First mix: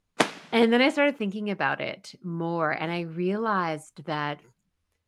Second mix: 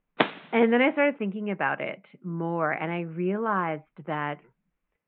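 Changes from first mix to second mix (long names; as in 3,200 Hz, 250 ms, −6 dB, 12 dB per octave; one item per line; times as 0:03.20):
speech: add Chebyshev band-pass filter 150–2,400 Hz, order 3
master: add Butterworth low-pass 3,800 Hz 96 dB per octave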